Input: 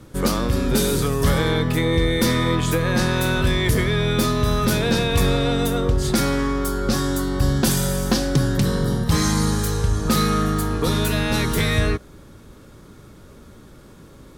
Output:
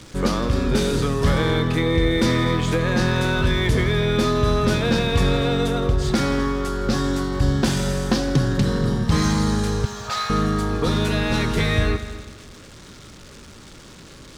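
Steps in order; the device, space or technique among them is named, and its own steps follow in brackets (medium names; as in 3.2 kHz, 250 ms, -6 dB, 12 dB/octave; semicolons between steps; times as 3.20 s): 9.85–10.30 s: Chebyshev band-pass 640–7700 Hz, order 4; budget class-D amplifier (dead-time distortion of 0.056 ms; zero-crossing glitches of -24.5 dBFS); distance through air 63 m; multi-head delay 82 ms, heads all three, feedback 43%, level -18 dB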